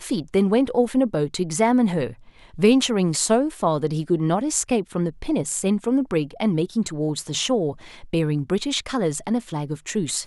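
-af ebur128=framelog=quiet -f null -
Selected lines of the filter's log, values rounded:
Integrated loudness:
  I:         -22.4 LUFS
  Threshold: -32.5 LUFS
Loudness range:
  LRA:         3.6 LU
  Threshold: -42.4 LUFS
  LRA low:   -24.5 LUFS
  LRA high:  -20.9 LUFS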